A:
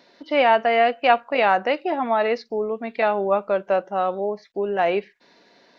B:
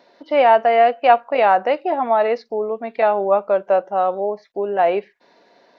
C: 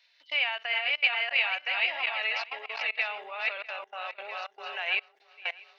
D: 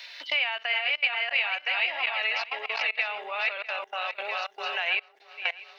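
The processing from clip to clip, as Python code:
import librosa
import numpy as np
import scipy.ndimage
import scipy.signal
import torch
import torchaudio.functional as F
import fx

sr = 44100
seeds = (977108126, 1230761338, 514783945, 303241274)

y1 = fx.peak_eq(x, sr, hz=690.0, db=9.0, octaves=2.0)
y1 = y1 * 10.0 ** (-4.0 / 20.0)
y2 = fx.reverse_delay_fb(y1, sr, ms=324, feedback_pct=61, wet_db=-5.5)
y2 = fx.level_steps(y2, sr, step_db=22)
y2 = fx.highpass_res(y2, sr, hz=2600.0, q=2.6)
y2 = y2 * 10.0 ** (4.5 / 20.0)
y3 = fx.band_squash(y2, sr, depth_pct=70)
y3 = y3 * 10.0 ** (1.5 / 20.0)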